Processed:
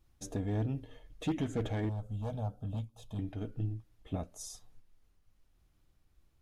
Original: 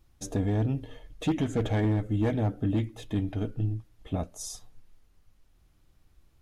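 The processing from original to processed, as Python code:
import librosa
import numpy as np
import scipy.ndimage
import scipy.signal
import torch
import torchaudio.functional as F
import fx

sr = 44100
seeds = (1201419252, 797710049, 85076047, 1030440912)

y = fx.fixed_phaser(x, sr, hz=810.0, stages=4, at=(1.89, 3.19))
y = fx.am_noise(y, sr, seeds[0], hz=5.7, depth_pct=60)
y = y * 10.0 ** (-4.5 / 20.0)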